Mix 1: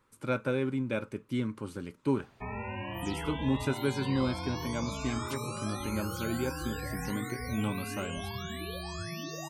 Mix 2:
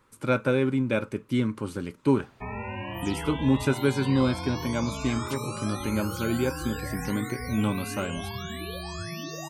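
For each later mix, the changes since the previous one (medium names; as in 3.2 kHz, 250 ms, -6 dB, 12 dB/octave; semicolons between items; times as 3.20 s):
speech +6.5 dB; background +3.0 dB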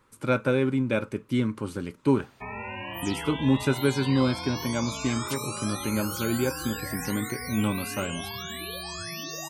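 background: add tilt EQ +2 dB/octave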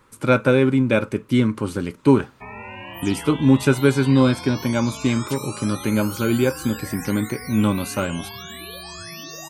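speech +7.5 dB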